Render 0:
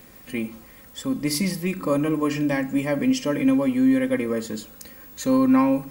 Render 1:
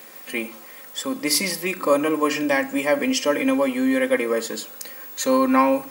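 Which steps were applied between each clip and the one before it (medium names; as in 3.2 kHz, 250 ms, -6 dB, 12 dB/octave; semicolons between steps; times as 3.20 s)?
high-pass 450 Hz 12 dB/octave; trim +7 dB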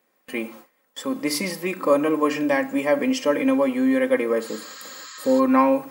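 gate with hold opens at -27 dBFS; treble shelf 2.1 kHz -9 dB; spectral replace 4.46–5.37 s, 1–8 kHz before; trim +1 dB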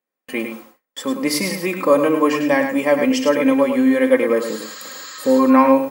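gate with hold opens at -36 dBFS; on a send: delay 104 ms -7.5 dB; on the sum: trim +4 dB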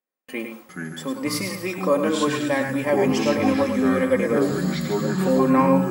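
ever faster or slower copies 287 ms, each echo -6 st, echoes 2; trim -6 dB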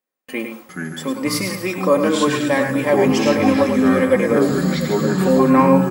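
echo from a far wall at 120 m, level -13 dB; trim +4.5 dB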